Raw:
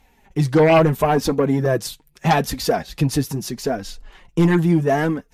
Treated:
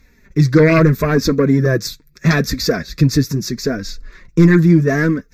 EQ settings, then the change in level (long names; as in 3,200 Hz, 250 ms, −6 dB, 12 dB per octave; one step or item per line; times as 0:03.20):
phaser with its sweep stopped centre 3,000 Hz, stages 6
+7.0 dB